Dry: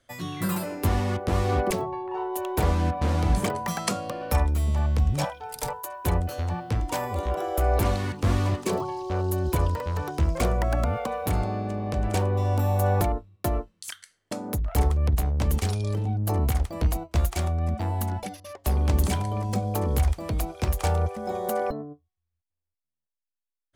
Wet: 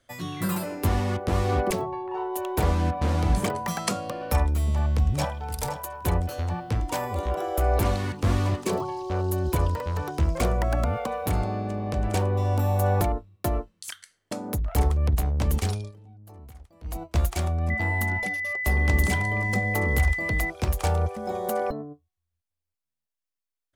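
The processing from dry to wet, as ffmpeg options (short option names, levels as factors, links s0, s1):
-filter_complex "[0:a]asplit=2[s0][s1];[s1]afade=t=in:st=4.64:d=0.01,afade=t=out:st=5.48:d=0.01,aecho=0:1:520|1040|1560:0.251189|0.0502377|0.0100475[s2];[s0][s2]amix=inputs=2:normalize=0,asettb=1/sr,asplit=3[s3][s4][s5];[s3]atrim=end=17.704[s6];[s4]atrim=start=17.7:end=20.5,asetpts=PTS-STARTPTS,afade=t=in:d=0.004:c=qsin,afade=t=out:st=2.796:d=0.004:c=qsin,aeval=exprs='val(0)+0.0447*sin(2*PI*2000*n/s)':c=same[s7];[s5]atrim=start=20.496[s8];[s6][s7]acrossfade=d=0.004:c1=hsin:c2=qsin[s9];[s9][s8]acrossfade=d=0.004:c1=qsin:c2=hsin,asplit=3[s10][s11][s12];[s10]atrim=end=15.92,asetpts=PTS-STARTPTS,afade=t=out:st=15.7:d=0.22:silence=0.0794328[s13];[s11]atrim=start=15.92:end=16.83,asetpts=PTS-STARTPTS,volume=0.0794[s14];[s12]atrim=start=16.83,asetpts=PTS-STARTPTS,afade=t=in:d=0.22:silence=0.0794328[s15];[s13][s14][s15]concat=n=3:v=0:a=1"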